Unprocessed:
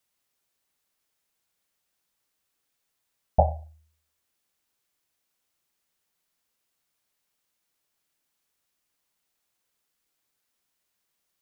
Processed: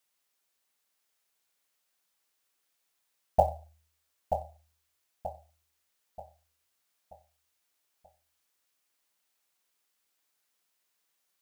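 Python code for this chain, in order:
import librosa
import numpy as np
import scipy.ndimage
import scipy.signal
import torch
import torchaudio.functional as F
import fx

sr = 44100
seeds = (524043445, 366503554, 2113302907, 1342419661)

p1 = fx.low_shelf(x, sr, hz=270.0, db=-10.5)
p2 = fx.quant_float(p1, sr, bits=4)
y = p2 + fx.echo_feedback(p2, sr, ms=932, feedback_pct=41, wet_db=-8, dry=0)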